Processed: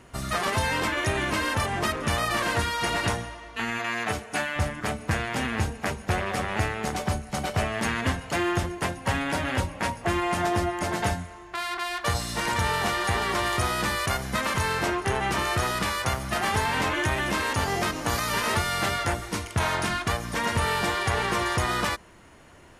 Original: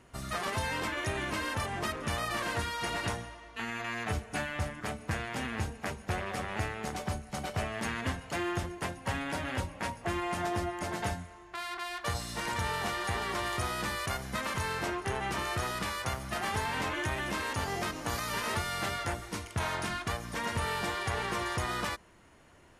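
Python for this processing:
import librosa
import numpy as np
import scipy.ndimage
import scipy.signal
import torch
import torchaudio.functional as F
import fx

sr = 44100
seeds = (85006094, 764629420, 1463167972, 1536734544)

y = fx.highpass(x, sr, hz=fx.line((3.78, 180.0), (4.55, 380.0)), slope=6, at=(3.78, 4.55), fade=0.02)
y = F.gain(torch.from_numpy(y), 7.5).numpy()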